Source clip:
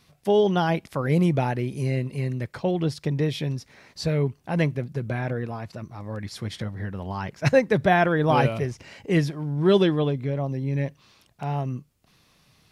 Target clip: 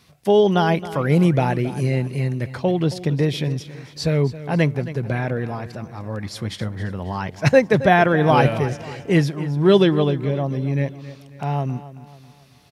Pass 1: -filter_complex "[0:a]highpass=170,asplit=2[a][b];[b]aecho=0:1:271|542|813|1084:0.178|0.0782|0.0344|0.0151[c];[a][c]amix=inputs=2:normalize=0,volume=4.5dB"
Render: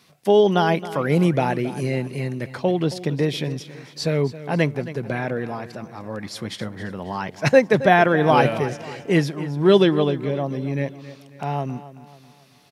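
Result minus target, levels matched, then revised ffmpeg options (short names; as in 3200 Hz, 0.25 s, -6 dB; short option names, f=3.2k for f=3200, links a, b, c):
125 Hz band -3.5 dB
-filter_complex "[0:a]highpass=45,asplit=2[a][b];[b]aecho=0:1:271|542|813|1084:0.178|0.0782|0.0344|0.0151[c];[a][c]amix=inputs=2:normalize=0,volume=4.5dB"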